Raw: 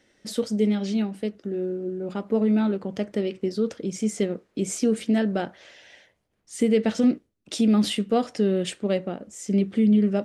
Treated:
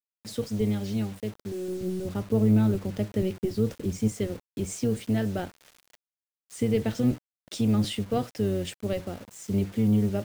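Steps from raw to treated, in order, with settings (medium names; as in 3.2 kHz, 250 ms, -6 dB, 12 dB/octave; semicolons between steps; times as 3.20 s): octave divider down 1 oct, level -3 dB; 1.68–4.08 s: bass shelf 350 Hz +6 dB; bit crusher 7-bit; trim -5.5 dB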